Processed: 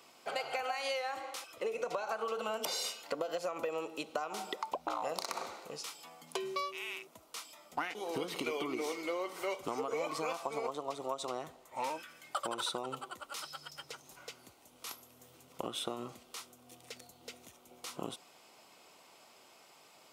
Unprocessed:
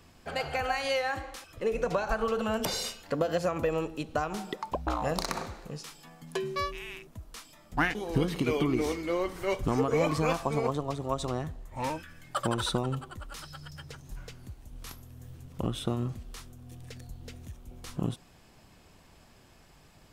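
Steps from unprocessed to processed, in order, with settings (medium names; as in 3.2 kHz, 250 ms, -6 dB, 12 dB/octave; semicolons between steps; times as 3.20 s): high-pass 470 Hz 12 dB/octave; band-stop 1.7 kHz, Q 5.1; compression, threshold -35 dBFS, peak gain reduction 11 dB; trim +2 dB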